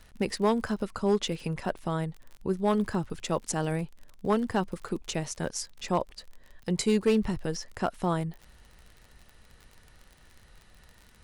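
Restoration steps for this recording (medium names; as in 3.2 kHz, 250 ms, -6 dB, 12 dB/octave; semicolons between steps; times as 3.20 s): clip repair -17 dBFS; de-click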